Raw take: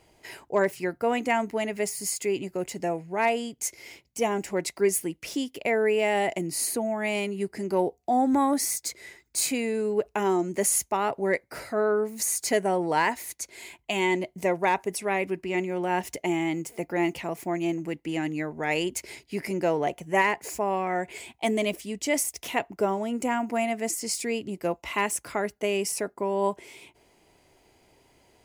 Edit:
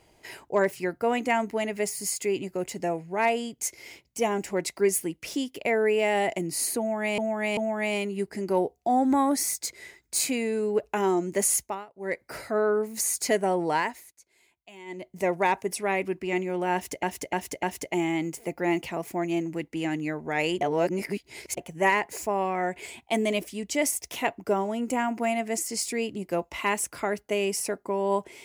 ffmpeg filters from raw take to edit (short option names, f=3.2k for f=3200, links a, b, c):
-filter_complex "[0:a]asplit=12[a][b][c][d][e][f][g][h][i][j][k][l];[a]atrim=end=7.182[m];[b]atrim=start=6.788:end=7.182[n];[c]atrim=start=6.788:end=11.08,asetpts=PTS-STARTPTS,afade=t=out:st=4.002:d=0.29:silence=0.0630957[o];[d]atrim=start=11.08:end=11.17,asetpts=PTS-STARTPTS,volume=-24dB[p];[e]atrim=start=11.17:end=13.34,asetpts=PTS-STARTPTS,afade=t=in:d=0.29:silence=0.0630957,afade=t=out:st=1.72:d=0.45:silence=0.0944061[q];[f]atrim=start=13.34:end=14.07,asetpts=PTS-STARTPTS,volume=-20.5dB[r];[g]atrim=start=14.07:end=16.252,asetpts=PTS-STARTPTS,afade=t=in:d=0.45:silence=0.0944061[s];[h]atrim=start=15.948:end=16.252[t];[i]atrim=start=15.948:end=16.252[u];[j]atrim=start=15.948:end=18.932[v];[k]atrim=start=18.928:end=19.892,asetpts=PTS-STARTPTS,areverse[w];[l]atrim=start=19.888[x];[m][n]acrossfade=d=0.004:c1=hsin:c2=hsin[y];[o][p][q][r][s]concat=n=5:v=0:a=1[z];[y][z]acrossfade=d=0.004:c1=hsin:c2=hsin[aa];[aa][t]acrossfade=d=0.004:c1=hsin:c2=hsin[ab];[ab][u]acrossfade=d=0.004:c1=hsin:c2=hsin[ac];[ac][v]acrossfade=d=0.004:c1=hsin:c2=hsin[ad];[ad][w]acrossfade=d=0.004:c1=hsin:c2=hsin[ae];[ae][x]acrossfade=d=0.004:c1=hsin:c2=hsin"